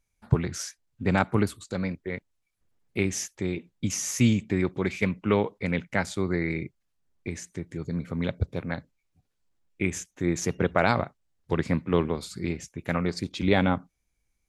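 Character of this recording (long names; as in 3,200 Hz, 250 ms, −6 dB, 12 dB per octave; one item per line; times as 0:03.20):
background noise floor −77 dBFS
spectral slope −5.5 dB per octave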